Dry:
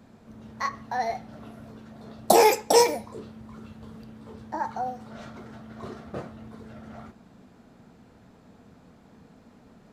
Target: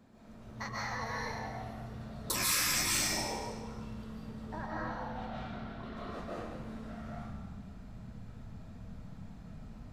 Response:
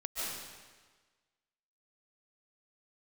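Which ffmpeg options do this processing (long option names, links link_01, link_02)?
-filter_complex "[0:a]asettb=1/sr,asplit=3[link_01][link_02][link_03];[link_01]atrim=end=4.424[link_04];[link_02]atrim=start=4.42:end=5.97,asetpts=PTS-STARTPTS,afade=type=in:duration=0.004:curve=qsin,afade=type=out:start_time=1.546:duration=0.004:curve=qsin,highshelf=frequency=4900:width_type=q:width=1.5:gain=-9[link_05];[link_03]atrim=start=5.966[link_06];[link_04][link_05]acrossfade=duration=0.004:curve1=hsin:curve2=qsin[link_07];[link_07][link_06]acrossfade=duration=0.004:curve1=qsin:curve2=hsin[link_08];[1:a]atrim=start_sample=2205[link_09];[link_08][link_09]afir=irnorm=-1:irlink=0,asubboost=boost=10:cutoff=110,afftfilt=real='re*lt(hypot(re,im),0.158)':imag='im*lt(hypot(re,im),0.158)':win_size=1024:overlap=0.75,volume=-4dB"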